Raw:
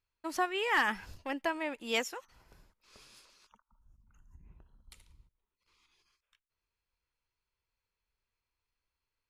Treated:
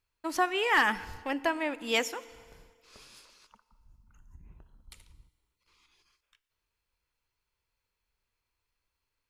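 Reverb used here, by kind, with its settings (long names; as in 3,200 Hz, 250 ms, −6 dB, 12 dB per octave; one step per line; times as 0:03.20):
feedback delay network reverb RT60 2 s, low-frequency decay 0.8×, high-frequency decay 0.85×, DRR 17 dB
level +4 dB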